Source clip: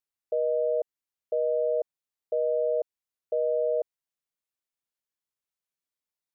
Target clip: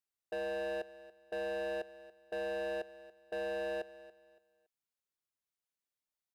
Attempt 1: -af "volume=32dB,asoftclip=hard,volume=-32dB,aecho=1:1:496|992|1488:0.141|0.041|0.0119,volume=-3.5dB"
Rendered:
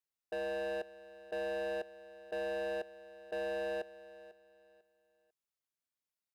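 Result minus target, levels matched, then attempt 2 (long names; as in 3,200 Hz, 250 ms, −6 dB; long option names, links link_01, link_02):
echo 214 ms late
-af "volume=32dB,asoftclip=hard,volume=-32dB,aecho=1:1:282|564|846:0.141|0.041|0.0119,volume=-3.5dB"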